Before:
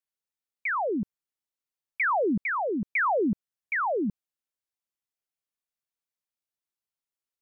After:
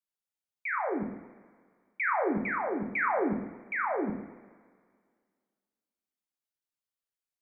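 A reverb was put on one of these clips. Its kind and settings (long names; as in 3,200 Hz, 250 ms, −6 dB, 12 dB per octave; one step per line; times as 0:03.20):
coupled-rooms reverb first 0.71 s, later 2 s, from −16 dB, DRR 0.5 dB
level −6 dB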